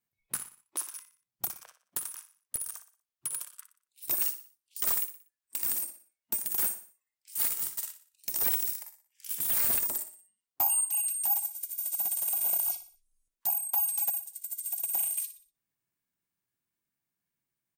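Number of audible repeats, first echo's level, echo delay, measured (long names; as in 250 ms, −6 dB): 3, −12.0 dB, 60 ms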